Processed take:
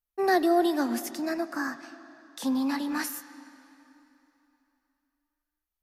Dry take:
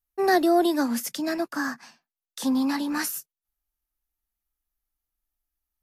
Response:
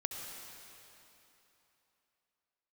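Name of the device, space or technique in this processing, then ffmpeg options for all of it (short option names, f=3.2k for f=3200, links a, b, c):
filtered reverb send: -filter_complex "[0:a]asplit=2[a][b];[b]highpass=160,lowpass=4.9k[c];[1:a]atrim=start_sample=2205[d];[c][d]afir=irnorm=-1:irlink=0,volume=-8.5dB[e];[a][e]amix=inputs=2:normalize=0,asettb=1/sr,asplit=3[f][g][h];[f]atrim=end=1.144[i];[g]atrim=start=1.14:end=1.73,asetpts=PTS-STARTPTS,afade=t=in:d=0.004:c=qsin,afade=t=out:st=0.586:d=0.004:c=qsin,equalizer=f=3.3k:t=o:w=0.31:g=-13[j];[h]atrim=start=1.726[k];[i][j]acrossfade=d=0.004:c1=hsin:c2=qsin[l];[l][k]acrossfade=d=0.004:c1=qsin:c2=hsin,volume=-5dB"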